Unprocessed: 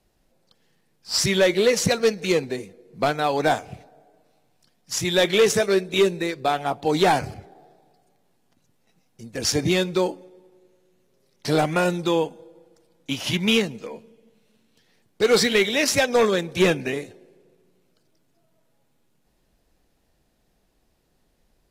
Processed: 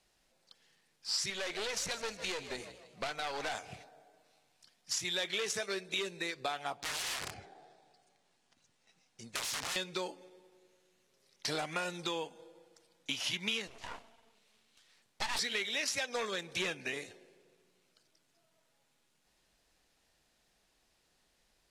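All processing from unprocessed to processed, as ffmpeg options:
ffmpeg -i in.wav -filter_complex "[0:a]asettb=1/sr,asplit=3[link_01][link_02][link_03];[link_01]atrim=end=1.304[link_04];[link_02]atrim=start=1.3:end=3.55,asetpts=PTS-STARTPTS,afade=type=in:duration=0.004:curve=qsin,afade=type=out:start_time=2.246:duration=0.004:curve=qsin,aeval=exprs='(tanh(12.6*val(0)+0.7)-tanh(0.7))/12.6':channel_layout=same,asplit=5[link_05][link_06][link_07][link_08][link_09];[link_06]adelay=154,afreqshift=61,volume=-15.5dB[link_10];[link_07]adelay=308,afreqshift=122,volume=-22.4dB[link_11];[link_08]adelay=462,afreqshift=183,volume=-29.4dB[link_12];[link_09]adelay=616,afreqshift=244,volume=-36.3dB[link_13];[link_05][link_10][link_11][link_12][link_13]amix=inputs=5:normalize=0,atrim=end_sample=99225[link_14];[link_03]atrim=start=3.546[link_15];[link_04][link_14]acrossfade=duration=0.004:curve1=hsin:curve2=qsin[link_16];[link_16][link_15]acrossfade=duration=0.004:curve1=qsin:curve2=hsin,asettb=1/sr,asplit=3[link_17][link_18][link_19];[link_17]atrim=end=6.774[link_20];[link_18]atrim=start=6.77:end=9.76,asetpts=PTS-STARTPTS,afade=type=in:duration=0.004:curve=qsin,afade=type=out:start_time=2.986:duration=0.004:curve=qsin,acompressor=threshold=-22dB:ratio=10:attack=3.2:release=140:knee=1:detection=peak,equalizer=frequency=12000:width_type=o:width=0.29:gain=-13.5,aeval=exprs='(mod(20*val(0)+1,2)-1)/20':channel_layout=same[link_21];[link_19]atrim=start=9.756[link_22];[link_20][link_21]acrossfade=duration=0.004:curve1=hsin:curve2=qsin[link_23];[link_23][link_22]acrossfade=duration=0.004:curve1=qsin:curve2=hsin,asettb=1/sr,asplit=3[link_24][link_25][link_26];[link_24]atrim=end=13.674[link_27];[link_25]atrim=start=13.67:end=15.39,asetpts=PTS-STARTPTS,afade=type=in:duration=0.004:curve=qsin,afade=type=out:start_time=1.716:duration=0.004:curve=qsin,bandreject=frequency=60:width_type=h:width=6,bandreject=frequency=120:width_type=h:width=6,bandreject=frequency=180:width_type=h:width=6,bandreject=frequency=240:width_type=h:width=6,bandreject=frequency=300:width_type=h:width=6,bandreject=frequency=360:width_type=h:width=6,bandreject=frequency=420:width_type=h:width=6,bandreject=frequency=480:width_type=h:width=6,aeval=exprs='abs(val(0))':channel_layout=same[link_28];[link_26]atrim=start=15.386[link_29];[link_27][link_28]acrossfade=duration=0.004:curve1=hsin:curve2=qsin[link_30];[link_30][link_29]acrossfade=duration=0.004:curve1=qsin:curve2=hsin,lowpass=9600,tiltshelf=frequency=740:gain=-7.5,acompressor=threshold=-29dB:ratio=4,volume=-5.5dB" out.wav

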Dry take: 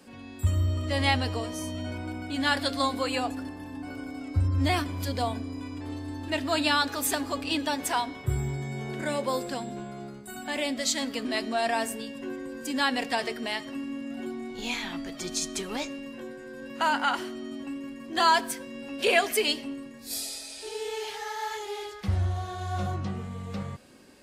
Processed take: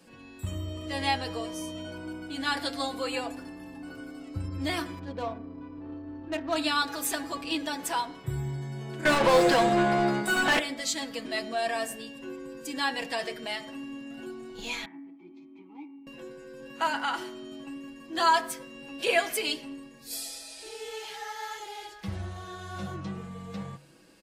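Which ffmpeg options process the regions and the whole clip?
ffmpeg -i in.wav -filter_complex "[0:a]asettb=1/sr,asplit=3[link_01][link_02][link_03];[link_01]atrim=end=4.994[link_04];[link_02]atrim=start=4.99:end=6.56,asetpts=PTS-STARTPTS,afade=type=in:duration=0.004:curve=qsin,afade=type=out:start_time=1.566:duration=0.004:curve=qsin,lowpass=6500,bandreject=frequency=2100:width=8.4,adynamicsmooth=sensitivity=2.5:basefreq=1000[link_05];[link_03]atrim=start=6.556[link_06];[link_04][link_05]acrossfade=duration=0.004:curve1=hsin:curve2=qsin[link_07];[link_07][link_06]acrossfade=duration=0.004:curve1=qsin:curve2=hsin,asettb=1/sr,asplit=3[link_08][link_09][link_10];[link_08]atrim=end=9.054[link_11];[link_09]atrim=start=9.05:end=10.59,asetpts=PTS-STARTPTS,afade=type=in:duration=0.004:curve=qsin,afade=type=out:start_time=1.536:duration=0.004:curve=qsin,asplit=2[link_12][link_13];[link_13]highpass=frequency=720:poles=1,volume=27dB,asoftclip=type=tanh:threshold=-16dB[link_14];[link_12][link_14]amix=inputs=2:normalize=0,lowpass=frequency=2100:poles=1,volume=-6dB,acontrast=66[link_15];[link_10]atrim=start=10.586[link_16];[link_11][link_15]acrossfade=duration=0.004:curve1=hsin:curve2=qsin[link_17];[link_17][link_16]acrossfade=duration=0.004:curve1=qsin:curve2=hsin,asettb=1/sr,asplit=3[link_18][link_19][link_20];[link_18]atrim=end=14.854[link_21];[link_19]atrim=start=14.85:end=16.07,asetpts=PTS-STARTPTS,afade=type=in:duration=0.004:curve=qsin,afade=type=out:start_time=1.216:duration=0.004:curve=qsin,equalizer=frequency=11000:width=0.5:gain=-8.5,adynamicsmooth=sensitivity=3.5:basefreq=1500,asplit=3[link_22][link_23][link_24];[link_22]bandpass=frequency=300:width_type=q:width=8,volume=0dB[link_25];[link_23]bandpass=frequency=870:width_type=q:width=8,volume=-6dB[link_26];[link_24]bandpass=frequency=2240:width_type=q:width=8,volume=-9dB[link_27];[link_25][link_26][link_27]amix=inputs=3:normalize=0[link_28];[link_20]atrim=start=16.066[link_29];[link_21][link_28]acrossfade=duration=0.004:curve1=hsin:curve2=qsin[link_30];[link_30][link_29]acrossfade=duration=0.004:curve1=qsin:curve2=hsin,aecho=1:1:6.1:0.64,bandreject=frequency=71.62:width_type=h:width=4,bandreject=frequency=143.24:width_type=h:width=4,bandreject=frequency=214.86:width_type=h:width=4,bandreject=frequency=286.48:width_type=h:width=4,bandreject=frequency=358.1:width_type=h:width=4,bandreject=frequency=429.72:width_type=h:width=4,bandreject=frequency=501.34:width_type=h:width=4,bandreject=frequency=572.96:width_type=h:width=4,bandreject=frequency=644.58:width_type=h:width=4,bandreject=frequency=716.2:width_type=h:width=4,bandreject=frequency=787.82:width_type=h:width=4,bandreject=frequency=859.44:width_type=h:width=4,bandreject=frequency=931.06:width_type=h:width=4,bandreject=frequency=1002.68:width_type=h:width=4,bandreject=frequency=1074.3:width_type=h:width=4,bandreject=frequency=1145.92:width_type=h:width=4,bandreject=frequency=1217.54:width_type=h:width=4,bandreject=frequency=1289.16:width_type=h:width=4,bandreject=frequency=1360.78:width_type=h:width=4,bandreject=frequency=1432.4:width_type=h:width=4,bandreject=frequency=1504.02:width_type=h:width=4,bandreject=frequency=1575.64:width_type=h:width=4,bandreject=frequency=1647.26:width_type=h:width=4,bandreject=frequency=1718.88:width_type=h:width=4,bandreject=frequency=1790.5:width_type=h:width=4,bandreject=frequency=1862.12:width_type=h:width=4,bandreject=frequency=1933.74:width_type=h:width=4,bandreject=frequency=2005.36:width_type=h:width=4,bandreject=frequency=2076.98:width_type=h:width=4,bandreject=frequency=2148.6:width_type=h:width=4,bandreject=frequency=2220.22:width_type=h:width=4,bandreject=frequency=2291.84:width_type=h:width=4,volume=-4dB" out.wav

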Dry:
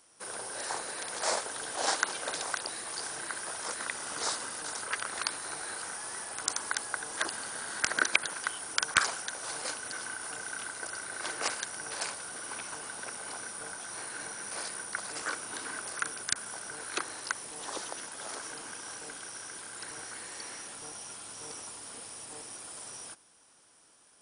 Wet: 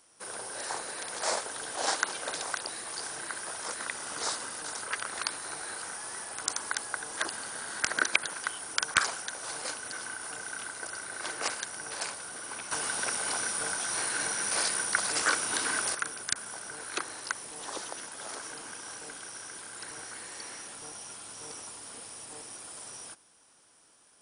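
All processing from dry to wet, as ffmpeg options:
ffmpeg -i in.wav -filter_complex "[0:a]asettb=1/sr,asplit=3[link_01][link_02][link_03];[link_01]atrim=end=12.714[link_04];[link_02]atrim=start=12.71:end=15.95,asetpts=PTS-STARTPTS,afade=type=in:duration=0.004:curve=qsin,afade=type=out:start_time=3.236:duration=0.004:curve=qsin,equalizer=frequency=4700:width=0.38:gain=4,acontrast=61[link_05];[link_03]atrim=start=15.946[link_06];[link_04][link_05]acrossfade=duration=0.004:curve1=hsin:curve2=qsin[link_07];[link_07][link_06]acrossfade=duration=0.004:curve1=qsin:curve2=hsin" out.wav

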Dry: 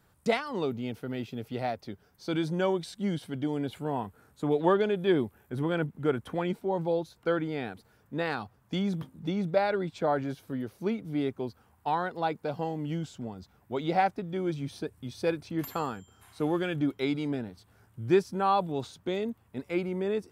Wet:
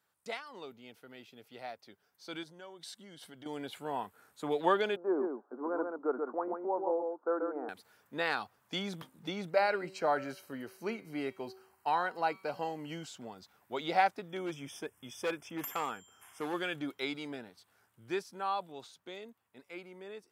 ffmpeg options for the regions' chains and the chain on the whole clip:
ffmpeg -i in.wav -filter_complex "[0:a]asettb=1/sr,asplit=3[link_01][link_02][link_03];[link_01]atrim=end=2.434[link_04];[link_02]atrim=start=2.43:end=3.46,asetpts=PTS-STARTPTS,afade=type=in:duration=0.004:curve=qsin,afade=type=out:start_time=1.026:duration=0.004:curve=qsin,bandreject=frequency=2400:width=8.9,acompressor=threshold=-38dB:ratio=4:attack=3.2:release=140:knee=1:detection=peak[link_05];[link_03]atrim=start=3.456[link_06];[link_04][link_05]acrossfade=duration=0.004:curve1=hsin:curve2=qsin[link_07];[link_07][link_06]acrossfade=duration=0.004:curve1=qsin:curve2=hsin,asettb=1/sr,asplit=3[link_08][link_09][link_10];[link_08]atrim=end=4.964[link_11];[link_09]atrim=start=4.96:end=7.69,asetpts=PTS-STARTPTS,afade=type=in:duration=0.004:curve=qsin,afade=type=out:start_time=2.726:duration=0.004:curve=qsin,asuperpass=centerf=550:order=12:qfactor=0.52,aecho=1:1:135:0.596,atrim=end_sample=120393[link_12];[link_10]atrim=start=7.686[link_13];[link_11][link_12]acrossfade=duration=0.004:curve1=hsin:curve2=qsin[link_14];[link_14][link_13]acrossfade=duration=0.004:curve1=qsin:curve2=hsin,asettb=1/sr,asplit=3[link_15][link_16][link_17];[link_15]atrim=end=9.494[link_18];[link_16]atrim=start=9.49:end=13.07,asetpts=PTS-STARTPTS,afade=type=in:duration=0.004:curve=qsin,afade=type=out:start_time=3.576:duration=0.004:curve=qsin,asuperstop=centerf=3500:order=12:qfactor=6.3,bandreject=frequency=190.1:width_type=h:width=4,bandreject=frequency=380.2:width_type=h:width=4,bandreject=frequency=570.3:width_type=h:width=4,bandreject=frequency=760.4:width_type=h:width=4,bandreject=frequency=950.5:width_type=h:width=4,bandreject=frequency=1140.6:width_type=h:width=4,bandreject=frequency=1330.7:width_type=h:width=4,bandreject=frequency=1520.8:width_type=h:width=4,bandreject=frequency=1710.9:width_type=h:width=4,bandreject=frequency=1901:width_type=h:width=4,bandreject=frequency=2091.1:width_type=h:width=4,bandreject=frequency=2281.2:width_type=h:width=4,bandreject=frequency=2471.3:width_type=h:width=4,bandreject=frequency=2661.4:width_type=h:width=4,bandreject=frequency=2851.5:width_type=h:width=4,bandreject=frequency=3041.6:width_type=h:width=4,bandreject=frequency=3231.7:width_type=h:width=4,bandreject=frequency=3421.8:width_type=h:width=4,bandreject=frequency=3611.9:width_type=h:width=4,bandreject=frequency=3802:width_type=h:width=4,bandreject=frequency=3992.1:width_type=h:width=4,bandreject=frequency=4182.2:width_type=h:width=4,bandreject=frequency=4372.3:width_type=h:width=4,bandreject=frequency=4562.4:width_type=h:width=4,bandreject=frequency=4752.5:width_type=h:width=4,bandreject=frequency=4942.6:width_type=h:width=4,bandreject=frequency=5132.7:width_type=h:width=4,bandreject=frequency=5322.8:width_type=h:width=4,bandreject=frequency=5512.9:width_type=h:width=4,bandreject=frequency=5703:width_type=h:width=4,bandreject=frequency=5893.1:width_type=h:width=4,bandreject=frequency=6083.2:width_type=h:width=4,bandreject=frequency=6273.3:width_type=h:width=4,bandreject=frequency=6463.4:width_type=h:width=4,bandreject=frequency=6653.5:width_type=h:width=4[link_19];[link_17]atrim=start=13.066[link_20];[link_18][link_19]acrossfade=duration=0.004:curve1=hsin:curve2=qsin[link_21];[link_21][link_20]acrossfade=duration=0.004:curve1=qsin:curve2=hsin,asettb=1/sr,asplit=3[link_22][link_23][link_24];[link_22]atrim=end=14.284[link_25];[link_23]atrim=start=14.28:end=16.54,asetpts=PTS-STARTPTS,afade=type=in:duration=0.004:curve=qsin,afade=type=out:start_time=2.256:duration=0.004:curve=qsin,asuperstop=centerf=4200:order=12:qfactor=2.9,volume=24.5dB,asoftclip=hard,volume=-24.5dB[link_26];[link_24]atrim=start=16.536[link_27];[link_25][link_26]acrossfade=duration=0.004:curve1=hsin:curve2=qsin[link_28];[link_28][link_27]acrossfade=duration=0.004:curve1=qsin:curve2=hsin,highpass=frequency=980:poles=1,dynaudnorm=framelen=300:gausssize=21:maxgain=11.5dB,volume=-8.5dB" out.wav

